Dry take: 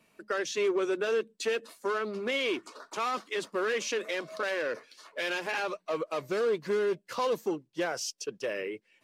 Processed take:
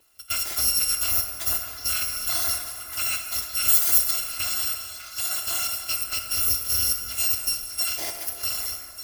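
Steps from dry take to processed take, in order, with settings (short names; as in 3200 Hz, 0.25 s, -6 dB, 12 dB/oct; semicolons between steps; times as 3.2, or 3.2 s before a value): FFT order left unsorted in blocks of 256 samples; 3.68–4.11 high shelf 5100 Hz +9 dB; delay with a stepping band-pass 0.597 s, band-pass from 1600 Hz, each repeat 1.4 oct, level -7.5 dB; plate-style reverb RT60 2.8 s, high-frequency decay 0.5×, DRR 3.5 dB; gain +4 dB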